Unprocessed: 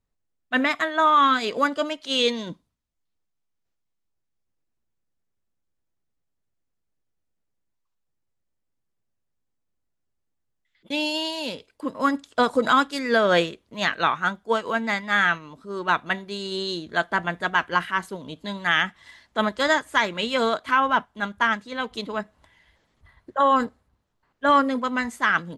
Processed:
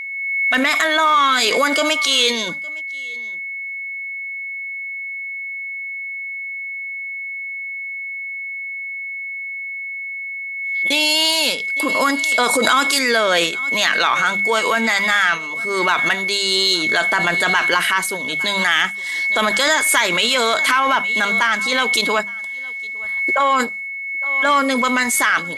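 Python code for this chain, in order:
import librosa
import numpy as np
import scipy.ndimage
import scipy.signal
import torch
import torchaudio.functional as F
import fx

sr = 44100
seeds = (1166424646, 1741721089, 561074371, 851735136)

p1 = fx.riaa(x, sr, side='recording')
p2 = fx.hum_notches(p1, sr, base_hz=50, count=4)
p3 = fx.over_compress(p2, sr, threshold_db=-25.0, ratio=-0.5)
p4 = p2 + (p3 * librosa.db_to_amplitude(-1.5))
p5 = p4 + 10.0 ** (-28.0 / 20.0) * np.sin(2.0 * np.pi * 2200.0 * np.arange(len(p4)) / sr)
p6 = fx.cheby_harmonics(p5, sr, harmonics=(5,), levels_db=(-25,), full_scale_db=-3.0)
p7 = p6 + fx.echo_single(p6, sr, ms=860, db=-24.0, dry=0)
y = fx.pre_swell(p7, sr, db_per_s=30.0)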